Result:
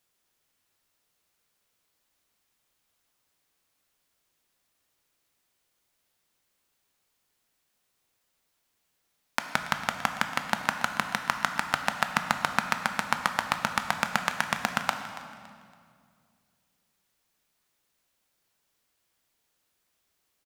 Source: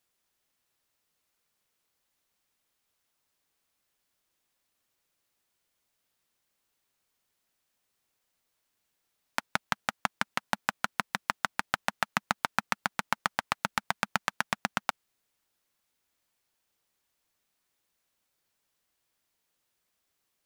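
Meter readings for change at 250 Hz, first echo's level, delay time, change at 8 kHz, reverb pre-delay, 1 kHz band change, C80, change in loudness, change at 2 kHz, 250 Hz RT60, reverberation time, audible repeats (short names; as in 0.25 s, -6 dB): +4.0 dB, -16.5 dB, 0.281 s, +3.5 dB, 12 ms, +3.5 dB, 8.0 dB, +3.5 dB, +3.5 dB, 2.7 s, 2.2 s, 2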